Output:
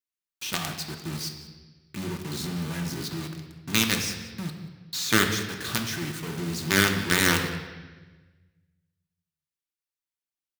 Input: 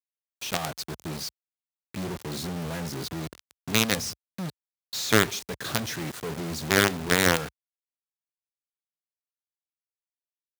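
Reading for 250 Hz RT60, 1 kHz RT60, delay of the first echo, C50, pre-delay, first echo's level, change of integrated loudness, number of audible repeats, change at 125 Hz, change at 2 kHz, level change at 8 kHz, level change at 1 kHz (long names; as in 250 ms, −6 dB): 1.5 s, 1.2 s, 183 ms, 6.5 dB, 3 ms, −18.0 dB, +0.5 dB, 1, +1.5 dB, +1.0 dB, +1.0 dB, −1.5 dB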